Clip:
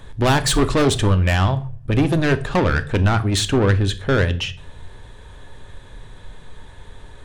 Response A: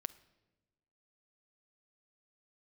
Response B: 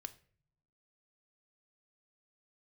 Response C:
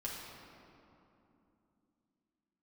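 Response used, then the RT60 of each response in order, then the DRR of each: B; 1.1, 0.50, 2.9 seconds; 12.5, 10.0, −5.5 decibels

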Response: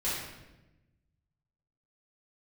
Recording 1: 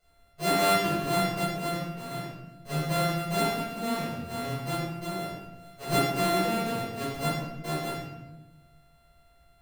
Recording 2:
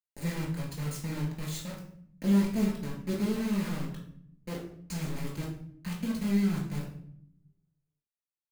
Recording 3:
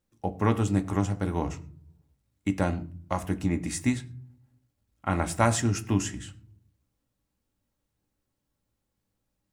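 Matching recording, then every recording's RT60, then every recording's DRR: 1; 1.0, 0.65, 0.50 seconds; −10.5, −3.5, 6.5 decibels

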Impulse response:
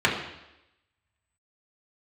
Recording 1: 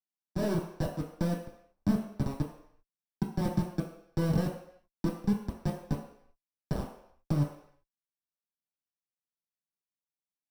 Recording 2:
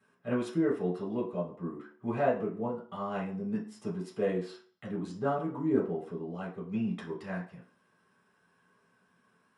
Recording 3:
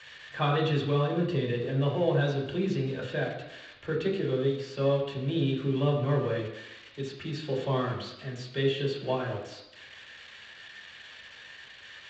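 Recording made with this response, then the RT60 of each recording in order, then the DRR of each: 3; non-exponential decay, 0.45 s, 0.90 s; −4.0, −6.5, −4.5 decibels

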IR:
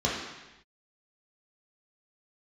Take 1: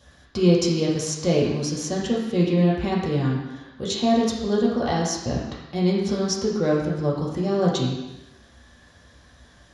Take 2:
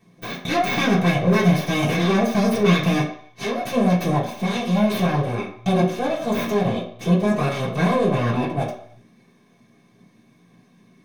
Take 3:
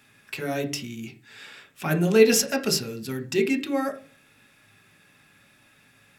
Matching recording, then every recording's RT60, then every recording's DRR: 1; non-exponential decay, 0.60 s, 0.45 s; −5.5, −8.0, 5.0 decibels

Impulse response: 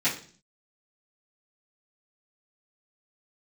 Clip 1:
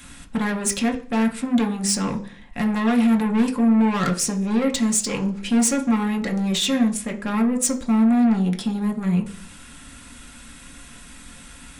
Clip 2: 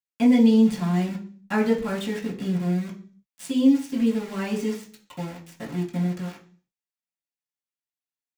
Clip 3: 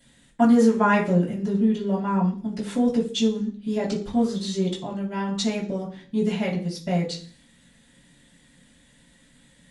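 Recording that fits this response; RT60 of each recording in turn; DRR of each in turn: 3; 0.45, 0.45, 0.45 seconds; 3.0, −6.0, −14.0 decibels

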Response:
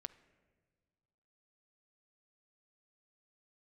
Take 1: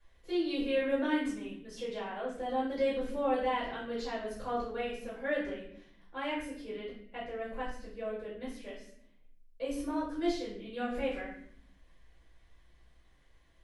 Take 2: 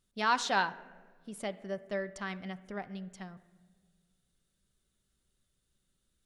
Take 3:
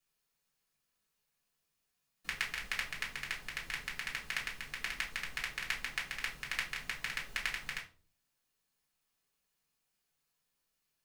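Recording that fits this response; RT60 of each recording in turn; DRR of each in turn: 2; 0.65 s, non-exponential decay, 0.40 s; −11.5, 10.5, −2.5 decibels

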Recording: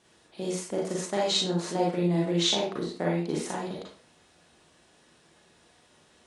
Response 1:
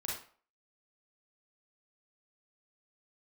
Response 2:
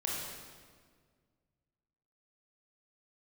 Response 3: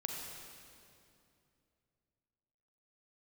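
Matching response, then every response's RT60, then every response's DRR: 1; 0.45, 1.8, 2.6 seconds; −4.5, −4.0, 0.5 decibels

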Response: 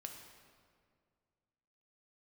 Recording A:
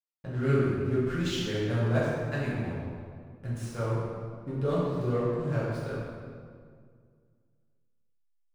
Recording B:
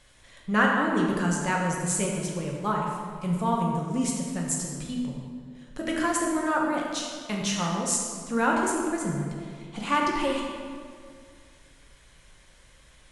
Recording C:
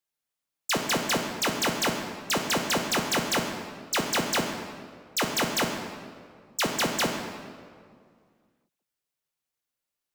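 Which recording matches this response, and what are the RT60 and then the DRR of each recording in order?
C; 2.0, 2.0, 2.1 seconds; −9.5, −2.0, 2.5 decibels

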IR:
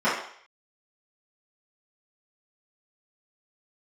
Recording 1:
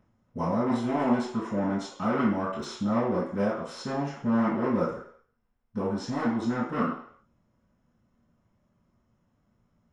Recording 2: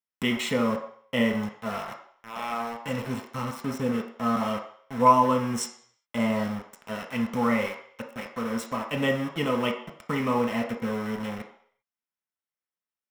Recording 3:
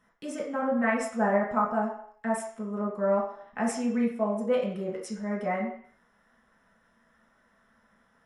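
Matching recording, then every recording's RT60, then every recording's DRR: 1; 0.60, 0.60, 0.60 seconds; −13.5, 2.0, −4.5 decibels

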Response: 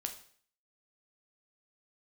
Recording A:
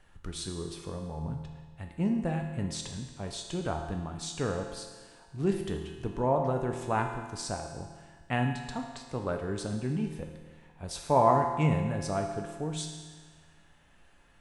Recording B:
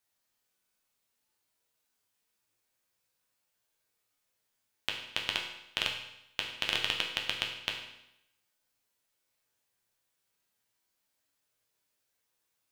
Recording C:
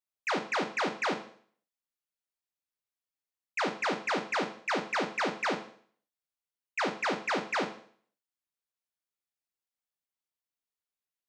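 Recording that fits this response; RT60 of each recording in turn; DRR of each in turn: C; 1.5, 0.85, 0.55 seconds; 2.5, −0.5, 5.0 decibels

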